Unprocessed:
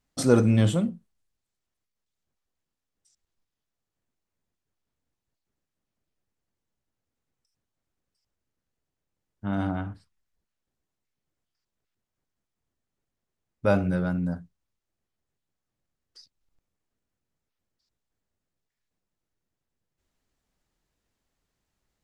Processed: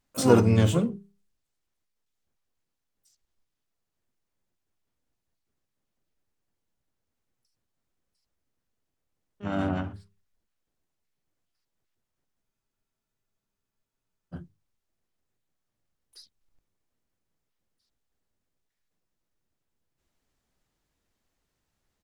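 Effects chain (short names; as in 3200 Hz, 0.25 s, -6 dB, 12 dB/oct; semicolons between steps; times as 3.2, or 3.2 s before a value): notches 50/100/150/200 Hz; harmoniser -3 st -8 dB, +12 st -10 dB; spectral freeze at 12.44, 1.90 s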